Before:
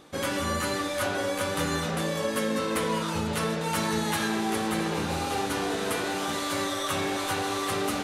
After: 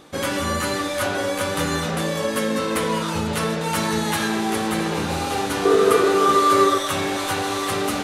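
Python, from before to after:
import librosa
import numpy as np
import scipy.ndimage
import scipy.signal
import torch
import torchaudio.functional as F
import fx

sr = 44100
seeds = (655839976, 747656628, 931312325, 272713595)

y = fx.small_body(x, sr, hz=(420.0, 1200.0), ring_ms=55, db=18, at=(5.65, 6.78))
y = y * librosa.db_to_amplitude(5.0)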